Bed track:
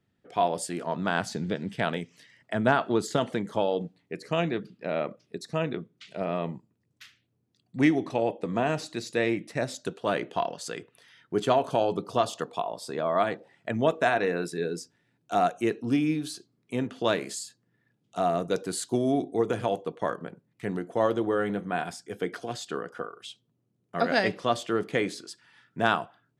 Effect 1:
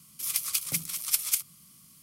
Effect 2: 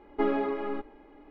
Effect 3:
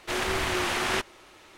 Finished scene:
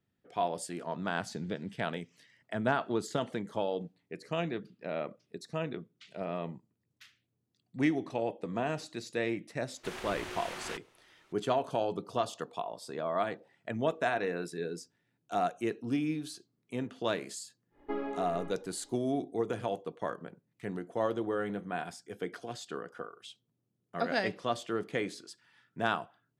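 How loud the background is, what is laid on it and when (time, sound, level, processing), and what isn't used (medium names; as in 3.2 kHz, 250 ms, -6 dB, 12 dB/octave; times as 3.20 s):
bed track -6.5 dB
9.76 s: add 3 -14.5 dB
17.70 s: add 2 -9 dB, fades 0.10 s
not used: 1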